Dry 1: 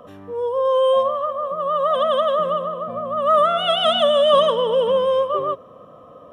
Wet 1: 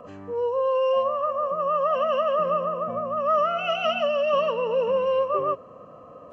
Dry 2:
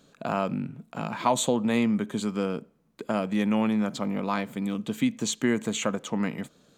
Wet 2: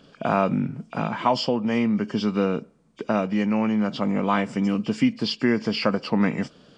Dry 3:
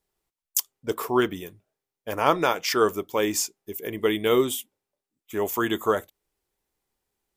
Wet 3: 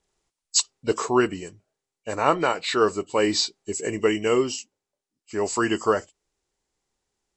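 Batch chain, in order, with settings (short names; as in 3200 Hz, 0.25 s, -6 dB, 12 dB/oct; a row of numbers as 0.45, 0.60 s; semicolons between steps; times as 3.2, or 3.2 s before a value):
nonlinear frequency compression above 2200 Hz 1.5:1; vocal rider within 4 dB 0.5 s; match loudness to -24 LUFS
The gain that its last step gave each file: -4.5, +4.5, +2.5 dB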